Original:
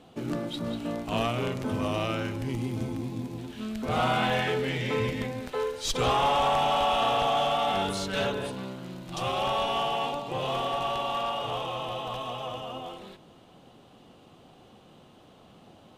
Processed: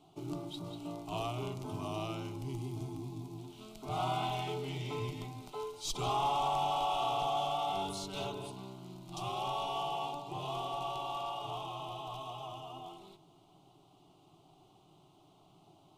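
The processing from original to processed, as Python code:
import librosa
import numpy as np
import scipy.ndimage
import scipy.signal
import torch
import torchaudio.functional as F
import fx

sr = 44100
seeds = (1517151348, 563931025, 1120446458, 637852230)

y = fx.fixed_phaser(x, sr, hz=340.0, stages=8)
y = y * librosa.db_to_amplitude(-6.0)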